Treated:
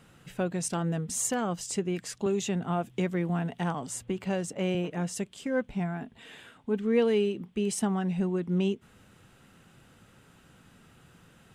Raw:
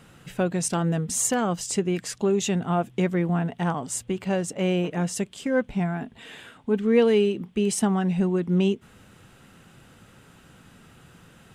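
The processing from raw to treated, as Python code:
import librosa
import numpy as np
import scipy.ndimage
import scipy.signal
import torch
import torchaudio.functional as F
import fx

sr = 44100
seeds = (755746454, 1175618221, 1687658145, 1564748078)

y = fx.band_squash(x, sr, depth_pct=40, at=(2.26, 4.75))
y = y * librosa.db_to_amplitude(-5.5)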